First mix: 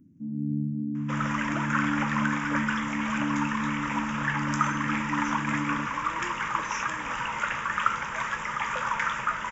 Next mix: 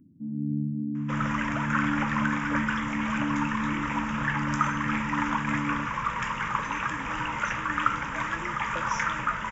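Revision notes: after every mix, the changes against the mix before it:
speech: entry +2.20 s
second sound: add bass and treble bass +7 dB, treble −4 dB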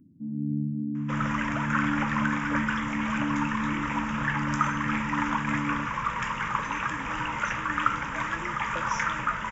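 nothing changed

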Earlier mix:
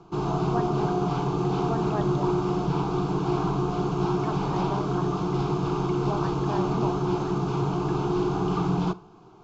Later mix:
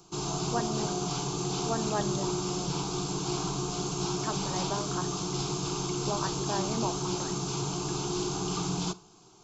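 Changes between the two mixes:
background −7.5 dB
master: remove low-pass filter 1,700 Hz 12 dB per octave

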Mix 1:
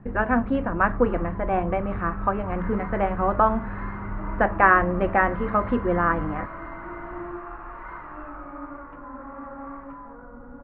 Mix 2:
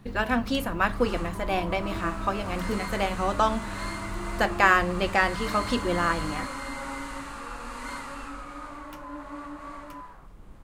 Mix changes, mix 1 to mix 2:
speech −4.0 dB
second sound: entry −2.70 s
master: remove inverse Chebyshev low-pass filter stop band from 7,200 Hz, stop band 70 dB

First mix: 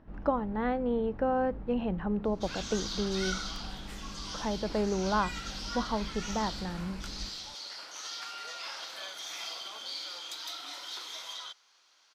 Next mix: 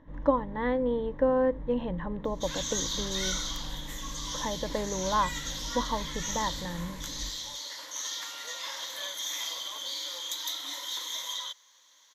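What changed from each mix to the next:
background: add high-shelf EQ 6,800 Hz +11.5 dB
master: add EQ curve with evenly spaced ripples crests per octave 1.1, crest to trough 12 dB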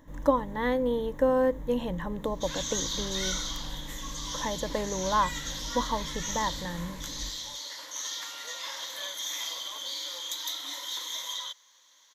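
speech: remove high-frequency loss of the air 310 metres

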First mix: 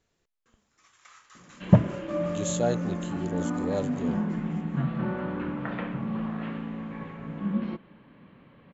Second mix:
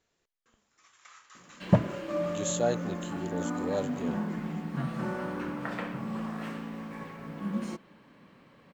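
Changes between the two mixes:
background: remove Butterworth low-pass 3,700 Hz 36 dB per octave
master: add low-shelf EQ 230 Hz −8 dB

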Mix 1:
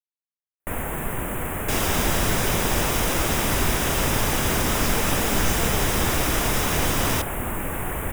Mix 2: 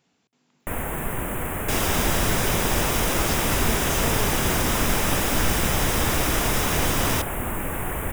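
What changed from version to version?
speech: entry −1.55 s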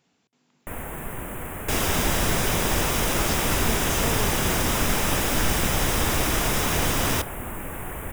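first sound −5.5 dB

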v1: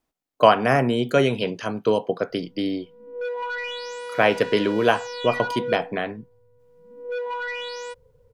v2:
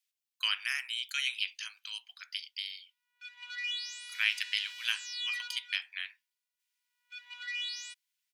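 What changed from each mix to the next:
master: add inverse Chebyshev high-pass filter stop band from 510 Hz, stop band 70 dB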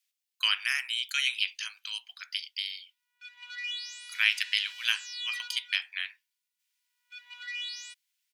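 speech +4.5 dB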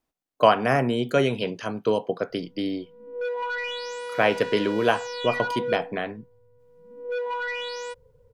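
speech −7.0 dB
master: remove inverse Chebyshev high-pass filter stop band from 510 Hz, stop band 70 dB

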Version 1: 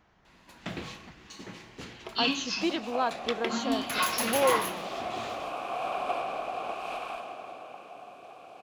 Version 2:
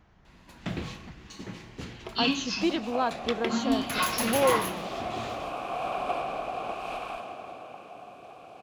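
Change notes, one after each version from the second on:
master: add low-shelf EQ 200 Hz +10.5 dB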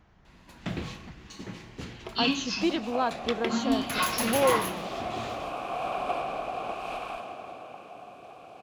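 nothing changed

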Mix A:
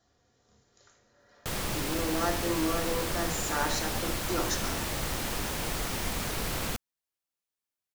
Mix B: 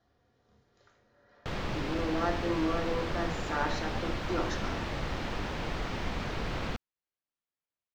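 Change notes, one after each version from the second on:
master: add high-frequency loss of the air 210 metres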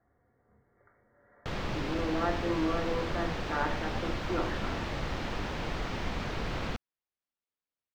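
speech: add linear-phase brick-wall low-pass 2,300 Hz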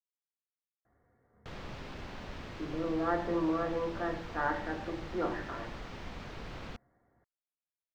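speech: entry +0.85 s
background −9.5 dB

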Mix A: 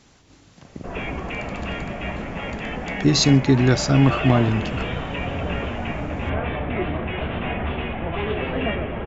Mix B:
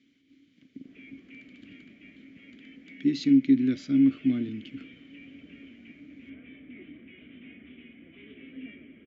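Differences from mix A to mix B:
background −10.0 dB
master: add formant filter i

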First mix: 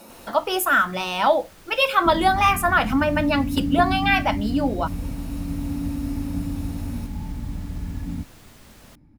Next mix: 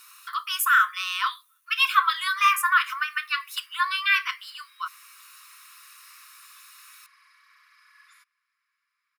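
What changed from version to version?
first sound: muted
master: add linear-phase brick-wall high-pass 1,000 Hz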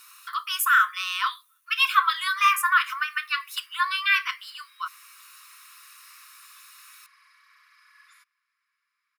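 nothing changed

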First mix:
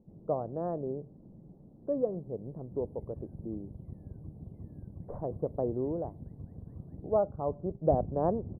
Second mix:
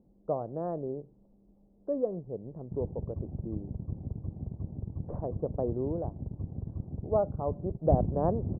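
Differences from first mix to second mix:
first sound: muted
second sound +8.5 dB

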